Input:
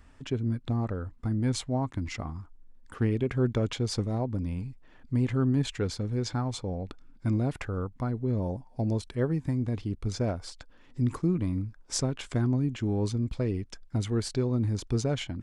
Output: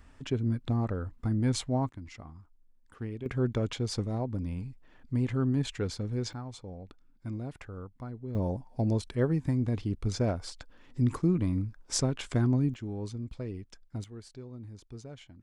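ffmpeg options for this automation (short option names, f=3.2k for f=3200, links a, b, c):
-af "asetnsamples=n=441:p=0,asendcmd='1.89 volume volume -11dB;3.26 volume volume -2.5dB;6.33 volume volume -10dB;8.35 volume volume 0.5dB;12.74 volume volume -8.5dB;14.04 volume volume -17dB',volume=0dB"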